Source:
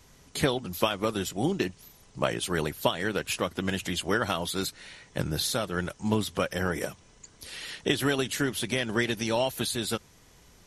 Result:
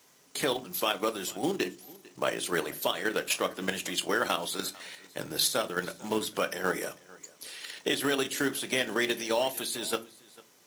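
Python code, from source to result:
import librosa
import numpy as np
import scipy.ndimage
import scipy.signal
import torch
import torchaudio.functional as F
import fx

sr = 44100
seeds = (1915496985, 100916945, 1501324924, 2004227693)

p1 = fx.quant_companded(x, sr, bits=4)
p2 = x + (p1 * librosa.db_to_amplitude(-8.5))
p3 = scipy.signal.sosfilt(scipy.signal.butter(2, 290.0, 'highpass', fs=sr, output='sos'), p2)
p4 = fx.level_steps(p3, sr, step_db=9)
p5 = fx.high_shelf(p4, sr, hz=9000.0, db=5.0)
p6 = p5 + fx.echo_single(p5, sr, ms=448, db=-22.5, dry=0)
y = fx.room_shoebox(p6, sr, seeds[0], volume_m3=140.0, walls='furnished', distance_m=0.44)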